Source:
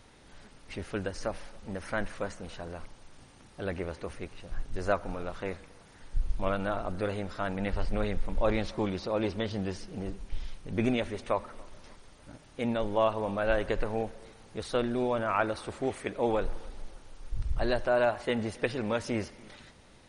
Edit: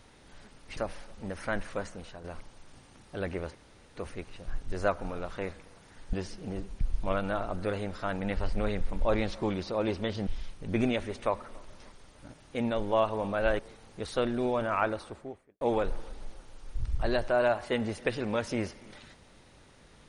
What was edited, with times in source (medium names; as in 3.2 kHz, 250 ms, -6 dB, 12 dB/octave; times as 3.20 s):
0.77–1.22 s: delete
2.35–2.69 s: fade out, to -7.5 dB
4.00 s: insert room tone 0.41 s
9.63–10.31 s: move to 6.17 s
13.63–14.16 s: delete
15.31–16.18 s: studio fade out